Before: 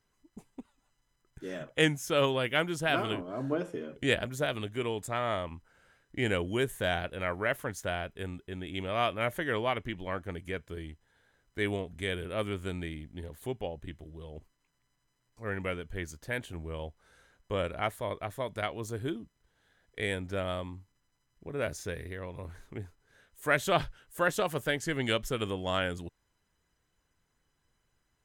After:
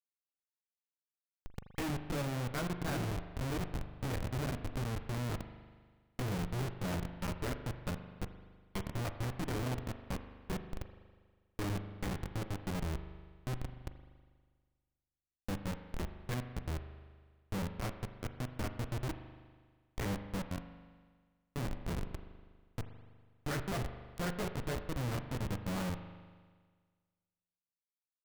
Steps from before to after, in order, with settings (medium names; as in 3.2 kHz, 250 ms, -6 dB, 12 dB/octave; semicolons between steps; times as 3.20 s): low-pass that closes with the level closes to 1.3 kHz, closed at -29.5 dBFS; peaking EQ 630 Hz -14.5 dB 2.4 oct; doubling 16 ms -2.5 dB; Schmitt trigger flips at -37 dBFS; spring tank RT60 1.6 s, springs 40 ms, chirp 65 ms, DRR 8.5 dB; trim +6.5 dB